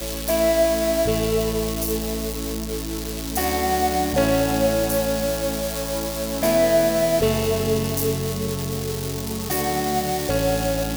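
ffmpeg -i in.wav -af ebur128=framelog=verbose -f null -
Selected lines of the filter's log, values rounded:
Integrated loudness:
  I:         -22.1 LUFS
  Threshold: -32.1 LUFS
Loudness range:
  LRA:         2.5 LU
  Threshold: -42.1 LUFS
  LRA low:   -23.5 LUFS
  LRA high:  -21.0 LUFS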